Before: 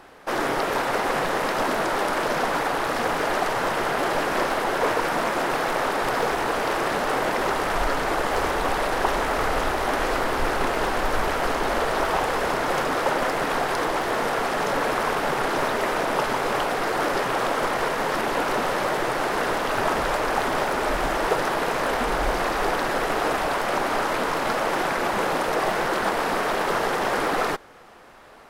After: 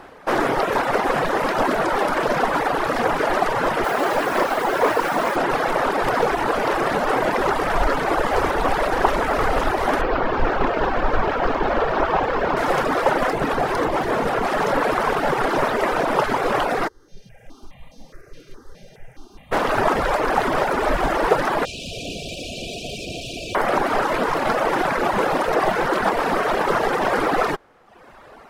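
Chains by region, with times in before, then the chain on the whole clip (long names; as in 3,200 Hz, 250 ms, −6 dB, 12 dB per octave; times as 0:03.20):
0:03.84–0:05.36: low-shelf EQ 110 Hz −8.5 dB + mains-hum notches 50/100/150/200 Hz + bit-depth reduction 6 bits, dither none
0:10.01–0:12.57: high-frequency loss of the air 120 metres + notch filter 2,000 Hz, Q 25 + linearly interpolated sample-rate reduction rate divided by 2×
0:13.33–0:14.47: low-shelf EQ 400 Hz +6 dB + tube saturation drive 17 dB, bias 0.35
0:16.87–0:19.51: guitar amp tone stack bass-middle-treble 10-0-1 + hum with harmonics 400 Hz, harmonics 16, −55 dBFS 0 dB per octave + step-sequenced phaser 4.8 Hz 230–1,500 Hz
0:21.65–0:23.55: wrap-around overflow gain 23.5 dB + linear-phase brick-wall band-stop 740–2,300 Hz + high-frequency loss of the air 74 metres
whole clip: reverb reduction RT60 0.94 s; high-shelf EQ 2,700 Hz −8 dB; level +7 dB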